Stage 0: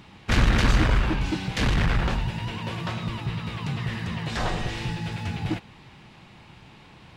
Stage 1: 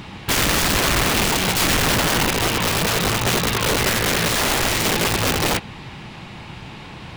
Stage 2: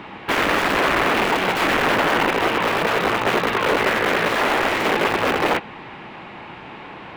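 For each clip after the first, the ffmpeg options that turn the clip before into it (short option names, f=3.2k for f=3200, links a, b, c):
-af "acontrast=90,alimiter=limit=-16dB:level=0:latency=1:release=14,aeval=exprs='(mod(10*val(0)+1,2)-1)/10':c=same,volume=5.5dB"
-filter_complex "[0:a]acrossover=split=250 2700:gain=0.141 1 0.1[a][b][c];[a][b][c]amix=inputs=3:normalize=0,volume=4dB"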